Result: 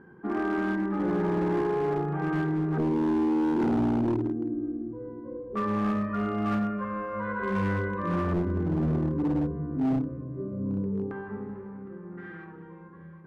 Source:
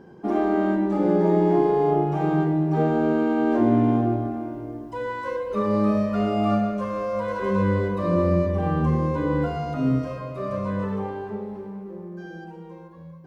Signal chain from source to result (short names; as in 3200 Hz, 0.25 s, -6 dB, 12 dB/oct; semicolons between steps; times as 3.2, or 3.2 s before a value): 12.11–12.63 self-modulated delay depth 0.25 ms; bell 640 Hz -10.5 dB 0.67 oct; LFO low-pass square 0.18 Hz 350–1600 Hz; multi-head echo 0.381 s, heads first and second, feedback 47%, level -19.5 dB; overloaded stage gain 18 dB; gain -4.5 dB